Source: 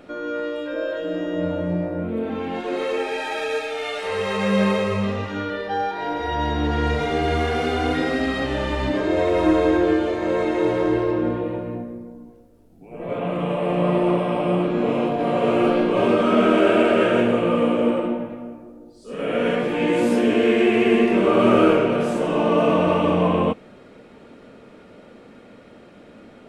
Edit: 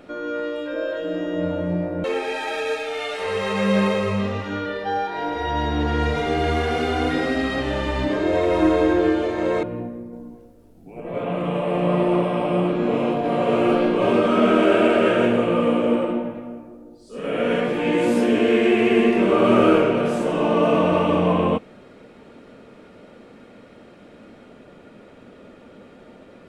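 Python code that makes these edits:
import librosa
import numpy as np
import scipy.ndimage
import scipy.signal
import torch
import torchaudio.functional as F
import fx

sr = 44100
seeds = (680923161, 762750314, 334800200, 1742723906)

y = fx.edit(x, sr, fx.cut(start_s=2.04, length_s=0.84),
    fx.cut(start_s=10.47, length_s=1.11),
    fx.clip_gain(start_s=12.08, length_s=0.87, db=3.0), tone=tone)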